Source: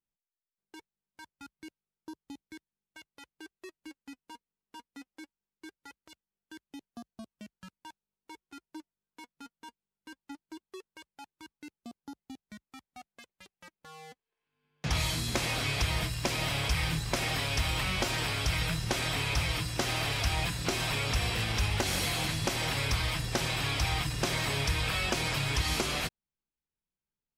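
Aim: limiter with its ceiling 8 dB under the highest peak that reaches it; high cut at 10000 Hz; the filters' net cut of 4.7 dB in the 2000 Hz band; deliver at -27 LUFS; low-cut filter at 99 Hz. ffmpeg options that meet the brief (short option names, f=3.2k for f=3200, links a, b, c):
-af "highpass=99,lowpass=10k,equalizer=f=2k:t=o:g=-6,volume=7dB,alimiter=limit=-17.5dB:level=0:latency=1"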